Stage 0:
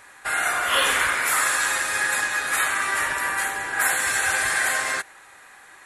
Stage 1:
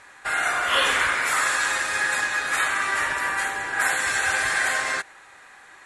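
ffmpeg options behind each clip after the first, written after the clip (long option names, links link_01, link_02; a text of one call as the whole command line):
ffmpeg -i in.wav -af "lowpass=7600" out.wav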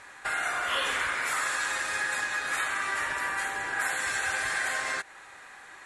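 ffmpeg -i in.wav -af "acompressor=threshold=-32dB:ratio=2" out.wav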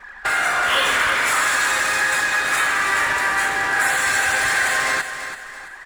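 ffmpeg -i in.wav -af "aeval=exprs='val(0)+0.5*0.0188*sgn(val(0))':channel_layout=same,anlmdn=10,aecho=1:1:334|668|1002|1336:0.316|0.12|0.0457|0.0174,volume=8.5dB" out.wav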